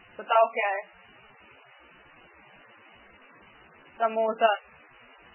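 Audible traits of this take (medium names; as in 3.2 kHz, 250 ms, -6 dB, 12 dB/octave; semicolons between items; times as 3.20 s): random-step tremolo, depth 90%; a quantiser's noise floor 8-bit, dither triangular; MP3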